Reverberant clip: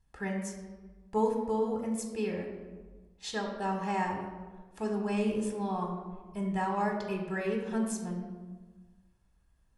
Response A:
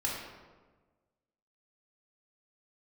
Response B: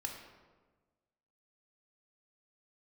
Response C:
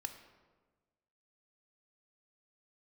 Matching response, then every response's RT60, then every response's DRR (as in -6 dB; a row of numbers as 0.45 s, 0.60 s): B; 1.3 s, 1.3 s, 1.4 s; -4.5 dB, 1.5 dB, 7.0 dB